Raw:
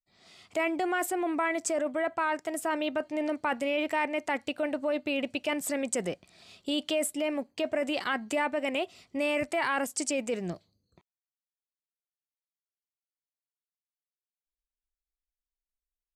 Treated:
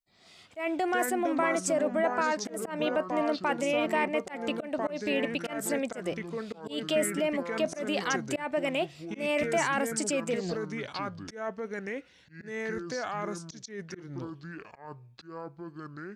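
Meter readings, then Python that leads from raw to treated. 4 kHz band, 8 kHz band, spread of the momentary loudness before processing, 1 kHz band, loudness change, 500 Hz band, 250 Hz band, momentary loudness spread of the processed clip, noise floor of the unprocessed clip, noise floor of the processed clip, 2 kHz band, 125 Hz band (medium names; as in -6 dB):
-0.5 dB, +0.5 dB, 5 LU, +1.0 dB, -0.5 dB, +1.5 dB, +1.0 dB, 15 LU, under -85 dBFS, -57 dBFS, +0.5 dB, +8.5 dB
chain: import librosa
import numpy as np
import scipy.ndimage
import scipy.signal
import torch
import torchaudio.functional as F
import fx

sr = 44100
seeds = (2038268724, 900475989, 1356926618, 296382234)

y = fx.echo_pitch(x, sr, ms=192, semitones=-5, count=2, db_per_echo=-6.0)
y = fx.dynamic_eq(y, sr, hz=650.0, q=5.0, threshold_db=-38.0, ratio=4.0, max_db=3)
y = fx.auto_swell(y, sr, attack_ms=162.0)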